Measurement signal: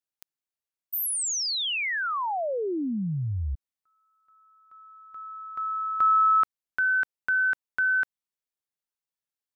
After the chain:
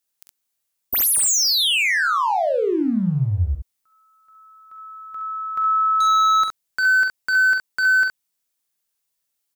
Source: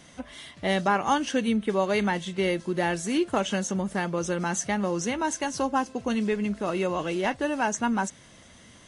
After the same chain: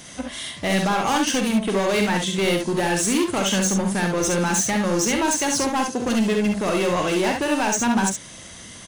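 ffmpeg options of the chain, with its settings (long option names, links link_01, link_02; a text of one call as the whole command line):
ffmpeg -i in.wav -filter_complex "[0:a]highshelf=frequency=4400:gain=9.5,asplit=2[link_01][link_02];[link_02]alimiter=limit=-17dB:level=0:latency=1:release=87,volume=1.5dB[link_03];[link_01][link_03]amix=inputs=2:normalize=0,asoftclip=type=hard:threshold=-19dB,aecho=1:1:46|67:0.398|0.562" out.wav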